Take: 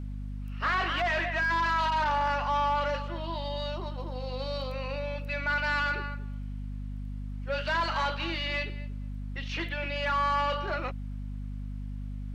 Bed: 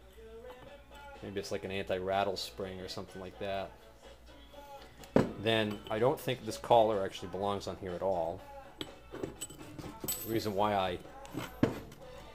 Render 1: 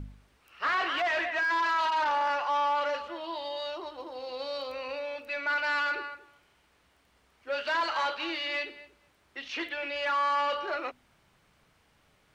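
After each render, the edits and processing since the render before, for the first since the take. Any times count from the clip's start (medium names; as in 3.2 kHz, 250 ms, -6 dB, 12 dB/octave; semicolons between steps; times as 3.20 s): de-hum 50 Hz, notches 5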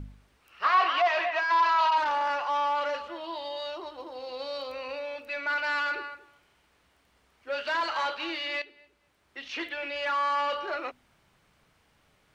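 0.64–1.98 s: cabinet simulation 320–6400 Hz, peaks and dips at 320 Hz -3 dB, 720 Hz +6 dB, 1.1 kHz +9 dB, 1.7 kHz -3 dB, 2.6 kHz +4 dB, 4.6 kHz +3 dB; 8.62–9.49 s: fade in, from -12.5 dB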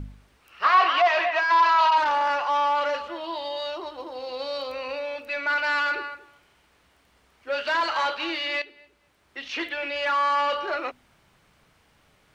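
trim +4.5 dB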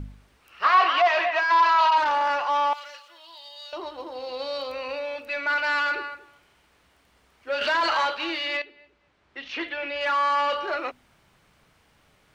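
2.73–3.73 s: differentiator; 7.61–8.05 s: level flattener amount 70%; 8.57–10.01 s: distance through air 110 m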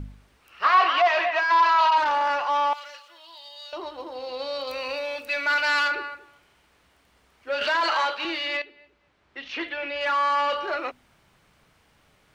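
4.67–5.88 s: treble shelf 3.6 kHz +11 dB; 7.64–8.25 s: Bessel high-pass 270 Hz, order 4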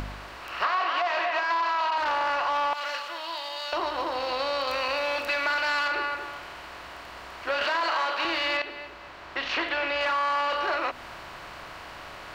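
spectral levelling over time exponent 0.6; compression 6:1, threshold -24 dBFS, peak gain reduction 11.5 dB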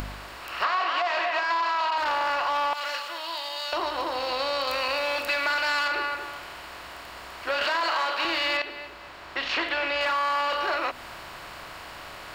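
treble shelf 5.7 kHz +8.5 dB; band-stop 6 kHz, Q 14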